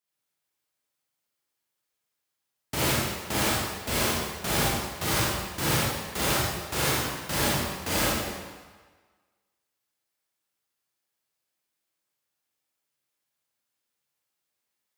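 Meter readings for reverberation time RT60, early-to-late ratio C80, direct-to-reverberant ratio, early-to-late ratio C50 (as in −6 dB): 1.4 s, 0.0 dB, −7.0 dB, −3.5 dB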